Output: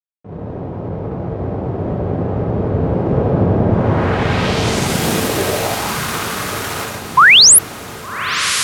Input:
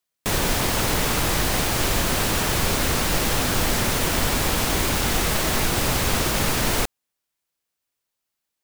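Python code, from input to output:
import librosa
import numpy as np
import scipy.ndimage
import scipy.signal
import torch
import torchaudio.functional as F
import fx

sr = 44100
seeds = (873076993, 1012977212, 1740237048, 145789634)

p1 = fx.doppler_pass(x, sr, speed_mps=19, closest_m=14.0, pass_at_s=3.4)
p2 = fx.dynamic_eq(p1, sr, hz=460.0, q=0.81, threshold_db=-41.0, ratio=4.0, max_db=3)
p3 = fx.rider(p2, sr, range_db=3, speed_s=0.5)
p4 = p2 + (p3 * 10.0 ** (-0.5 / 20.0))
p5 = fx.rev_gated(p4, sr, seeds[0], gate_ms=200, shape='flat', drr_db=-3.0)
p6 = np.sign(p5) * np.maximum(np.abs(p5) - 10.0 ** (-30.0 / 20.0), 0.0)
p7 = fx.filter_sweep_highpass(p6, sr, from_hz=98.0, to_hz=1200.0, start_s=4.83, end_s=5.99, q=2.5)
p8 = fx.spec_paint(p7, sr, seeds[1], shape='rise', start_s=7.17, length_s=0.42, low_hz=950.0, high_hz=12000.0, level_db=-6.0)
p9 = fx.filter_sweep_lowpass(p8, sr, from_hz=590.0, to_hz=14000.0, start_s=3.68, end_s=5.03, q=0.93)
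y = p9 + fx.echo_diffused(p9, sr, ms=1166, feedback_pct=56, wet_db=-10.0, dry=0)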